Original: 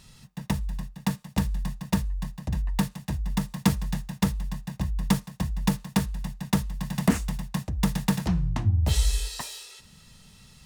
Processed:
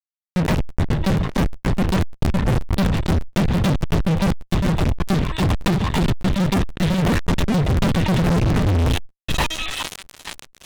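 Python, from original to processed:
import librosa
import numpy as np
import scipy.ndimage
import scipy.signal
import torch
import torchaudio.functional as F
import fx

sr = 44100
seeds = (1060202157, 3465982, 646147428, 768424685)

y = fx.rattle_buzz(x, sr, strikes_db=-20.0, level_db=-30.0)
y = fx.noise_reduce_blind(y, sr, reduce_db=14)
y = fx.low_shelf(y, sr, hz=150.0, db=-8.0, at=(4.49, 7.01), fade=0.02)
y = fx.rider(y, sr, range_db=5, speed_s=0.5)
y = fx.low_shelf(y, sr, hz=330.0, db=7.0)
y = y + 10.0 ** (-16.5 / 20.0) * np.pad(y, (int(406 * sr / 1000.0), 0))[:len(y)]
y = fx.lpc_vocoder(y, sr, seeds[0], excitation='pitch_kept', order=16)
y = fx.echo_wet_highpass(y, sr, ms=866, feedback_pct=64, hz=2500.0, wet_db=-6)
y = fx.fuzz(y, sr, gain_db=40.0, gate_db=-44.0)
y = fx.buffer_crackle(y, sr, first_s=0.44, period_s=0.12, block=512, kind='repeat')
y = fx.sustainer(y, sr, db_per_s=86.0)
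y = y * librosa.db_to_amplitude(-2.5)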